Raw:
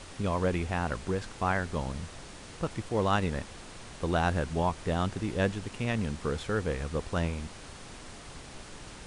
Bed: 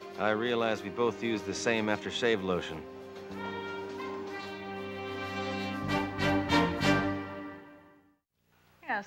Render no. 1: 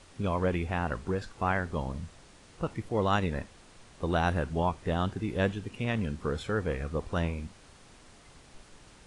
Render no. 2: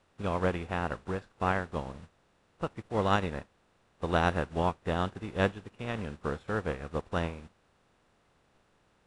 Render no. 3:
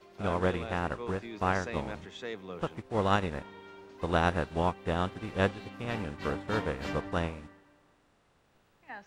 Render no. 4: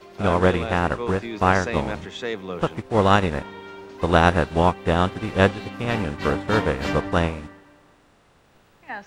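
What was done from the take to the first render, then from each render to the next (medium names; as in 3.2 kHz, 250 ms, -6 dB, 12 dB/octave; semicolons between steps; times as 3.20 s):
noise print and reduce 9 dB
spectral levelling over time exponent 0.6; upward expansion 2.5:1, over -40 dBFS
add bed -11.5 dB
trim +10.5 dB; peak limiter -2 dBFS, peak gain reduction 1.5 dB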